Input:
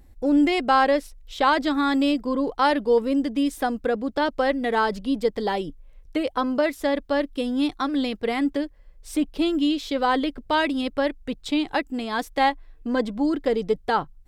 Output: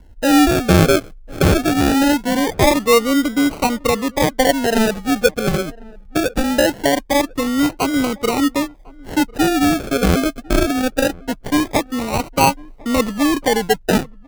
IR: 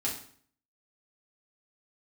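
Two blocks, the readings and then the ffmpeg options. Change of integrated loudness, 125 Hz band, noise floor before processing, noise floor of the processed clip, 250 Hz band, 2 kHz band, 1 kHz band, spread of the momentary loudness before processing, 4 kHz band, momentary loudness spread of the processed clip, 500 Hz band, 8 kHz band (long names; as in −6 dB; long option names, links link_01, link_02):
+6.5 dB, +22.5 dB, −50 dBFS, −41 dBFS, +6.5 dB, +6.5 dB, +3.5 dB, 7 LU, +8.0 dB, 7 LU, +6.0 dB, +20.0 dB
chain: -filter_complex "[0:a]highshelf=frequency=5900:gain=4,acrossover=split=140[link_01][link_02];[link_02]acrusher=samples=36:mix=1:aa=0.000001:lfo=1:lforange=21.6:lforate=0.22[link_03];[link_01][link_03]amix=inputs=2:normalize=0,asplit=2[link_04][link_05];[link_05]adelay=1050,volume=-24dB,highshelf=frequency=4000:gain=-23.6[link_06];[link_04][link_06]amix=inputs=2:normalize=0,volume=6.5dB"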